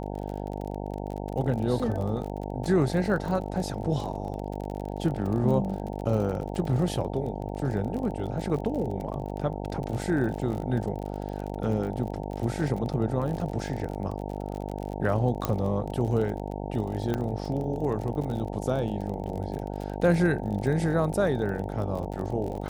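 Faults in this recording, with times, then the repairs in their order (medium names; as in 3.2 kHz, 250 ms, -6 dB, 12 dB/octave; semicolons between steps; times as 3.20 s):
buzz 50 Hz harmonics 18 -34 dBFS
crackle 36 per s -33 dBFS
15.45 s: pop -12 dBFS
17.14 s: pop -16 dBFS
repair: de-click; de-hum 50 Hz, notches 18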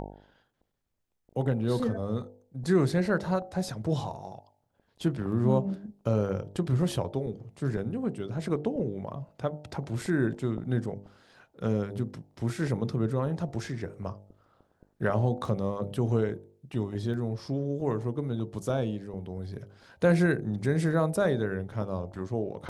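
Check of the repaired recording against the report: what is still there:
15.45 s: pop
17.14 s: pop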